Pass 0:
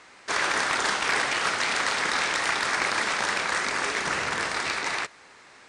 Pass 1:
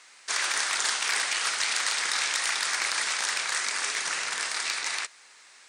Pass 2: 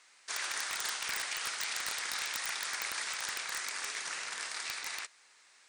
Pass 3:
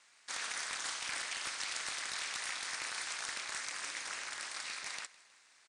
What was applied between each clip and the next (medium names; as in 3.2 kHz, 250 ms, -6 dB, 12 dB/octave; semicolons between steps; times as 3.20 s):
tilt EQ +4.5 dB/octave; trim -7.5 dB
integer overflow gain 14.5 dB; trim -9 dB
ring modulator 120 Hz; feedback delay 158 ms, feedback 54%, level -21 dB; resampled via 22.05 kHz